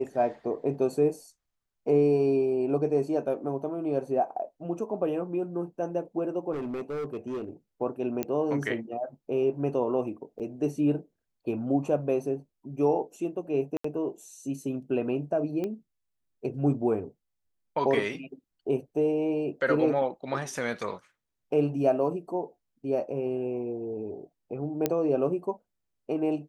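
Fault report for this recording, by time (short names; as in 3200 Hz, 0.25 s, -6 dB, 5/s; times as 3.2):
6.52–7.49 clipped -29.5 dBFS
8.23 pop -15 dBFS
10.39–10.4 gap 7.5 ms
13.77–13.84 gap 74 ms
15.64 pop -21 dBFS
24.86 pop -11 dBFS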